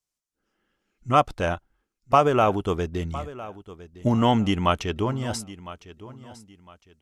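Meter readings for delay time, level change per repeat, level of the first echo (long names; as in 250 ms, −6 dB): 1,007 ms, −10.5 dB, −17.0 dB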